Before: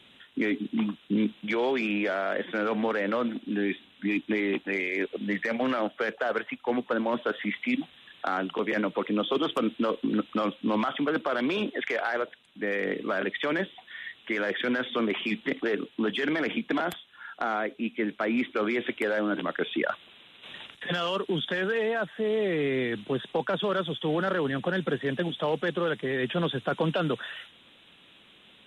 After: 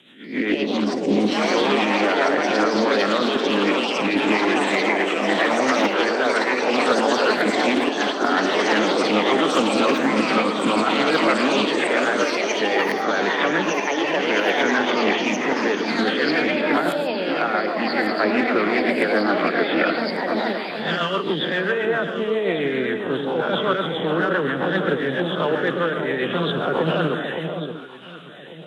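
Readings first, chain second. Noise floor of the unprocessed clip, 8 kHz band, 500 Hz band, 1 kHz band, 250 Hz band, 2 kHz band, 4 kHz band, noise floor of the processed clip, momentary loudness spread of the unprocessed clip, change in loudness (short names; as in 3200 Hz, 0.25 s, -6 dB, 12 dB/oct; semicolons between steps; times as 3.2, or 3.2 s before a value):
-57 dBFS, n/a, +8.5 dB, +11.5 dB, +7.0 dB, +9.5 dB, +11.0 dB, -29 dBFS, 5 LU, +8.5 dB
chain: spectral swells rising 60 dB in 0.53 s; non-linear reverb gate 0.16 s rising, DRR 9 dB; rotary speaker horn 7.5 Hz; HPF 130 Hz 24 dB/oct; echo with dull and thin repeats by turns 0.571 s, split 880 Hz, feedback 52%, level -6 dB; dynamic EQ 1100 Hz, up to +5 dB, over -42 dBFS, Q 0.88; echoes that change speed 0.24 s, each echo +5 st, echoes 3; Doppler distortion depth 0.15 ms; gain +4 dB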